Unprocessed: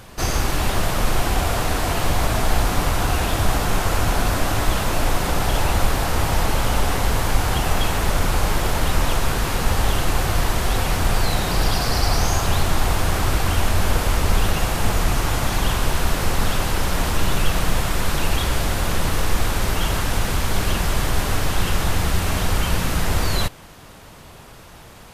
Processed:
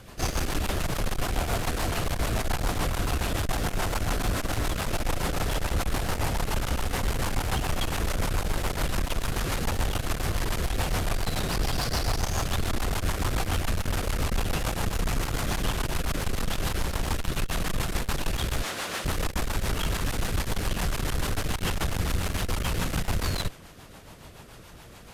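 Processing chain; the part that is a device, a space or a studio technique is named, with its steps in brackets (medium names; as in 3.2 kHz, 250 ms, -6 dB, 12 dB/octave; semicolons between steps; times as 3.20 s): 18.62–19.05 s: frequency weighting A; overdriven rotary cabinet (valve stage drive 20 dB, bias 0.5; rotary cabinet horn 7 Hz)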